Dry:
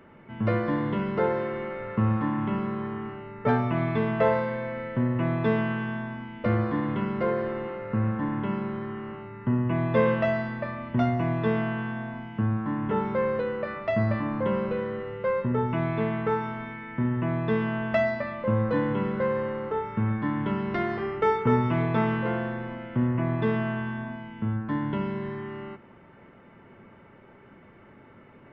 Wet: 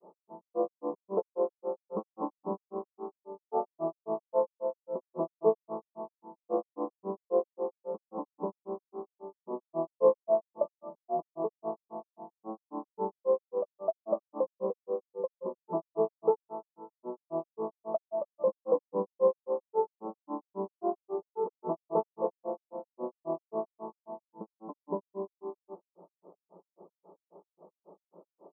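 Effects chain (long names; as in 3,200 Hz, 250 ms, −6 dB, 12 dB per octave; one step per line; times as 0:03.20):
brick-wall band-pass 170–1,400 Hz
phaser with its sweep stopped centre 570 Hz, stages 4
granular cloud 145 ms, grains 3.7 per second, spray 14 ms, pitch spread up and down by 0 semitones
level +6 dB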